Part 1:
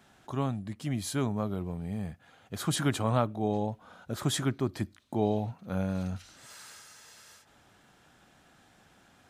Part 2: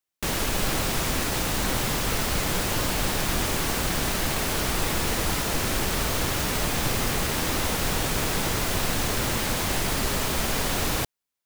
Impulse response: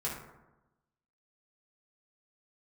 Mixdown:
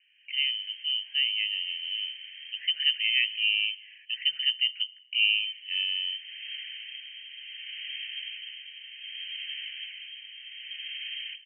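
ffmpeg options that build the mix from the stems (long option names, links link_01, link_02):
-filter_complex "[0:a]equalizer=frequency=390:width=1.5:gain=4.5,dynaudnorm=framelen=120:gausssize=3:maxgain=5.5dB,volume=-5.5dB,asplit=3[link_01][link_02][link_03];[link_02]volume=-23dB[link_04];[1:a]tremolo=f=0.65:d=0.63,adelay=300,volume=-11.5dB,asplit=3[link_05][link_06][link_07];[link_05]atrim=end=3.66,asetpts=PTS-STARTPTS,afade=type=out:start_time=3.656:duration=0.004:curve=hsin[link_08];[link_06]atrim=start=3.66:end=5.23,asetpts=PTS-STARTPTS,volume=0[link_09];[link_07]atrim=start=5.23,asetpts=PTS-STARTPTS,afade=type=in:duration=0.004:curve=hsin[link_10];[link_08][link_09][link_10]concat=n=3:v=0:a=1,asplit=2[link_11][link_12];[link_12]volume=-13dB[link_13];[link_03]apad=whole_len=518448[link_14];[link_11][link_14]sidechaincompress=threshold=-45dB:ratio=4:attack=16:release=351[link_15];[2:a]atrim=start_sample=2205[link_16];[link_04][link_13]amix=inputs=2:normalize=0[link_17];[link_17][link_16]afir=irnorm=-1:irlink=0[link_18];[link_01][link_15][link_18]amix=inputs=3:normalize=0,asuperstop=centerf=2500:order=8:qfactor=0.78,lowpass=frequency=2700:width_type=q:width=0.5098,lowpass=frequency=2700:width_type=q:width=0.6013,lowpass=frequency=2700:width_type=q:width=0.9,lowpass=frequency=2700:width_type=q:width=2.563,afreqshift=-3200"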